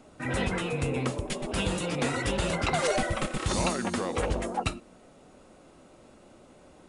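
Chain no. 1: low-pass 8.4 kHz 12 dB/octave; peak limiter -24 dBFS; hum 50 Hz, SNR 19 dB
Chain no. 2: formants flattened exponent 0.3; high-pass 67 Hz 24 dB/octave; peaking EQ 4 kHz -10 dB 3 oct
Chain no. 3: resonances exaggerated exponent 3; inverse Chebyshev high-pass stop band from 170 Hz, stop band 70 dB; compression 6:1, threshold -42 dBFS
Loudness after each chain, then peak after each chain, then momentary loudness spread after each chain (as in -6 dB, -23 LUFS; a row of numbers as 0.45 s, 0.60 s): -33.5 LUFS, -32.5 LUFS, -47.5 LUFS; -23.5 dBFS, -17.5 dBFS, -27.0 dBFS; 20 LU, 5 LU, 7 LU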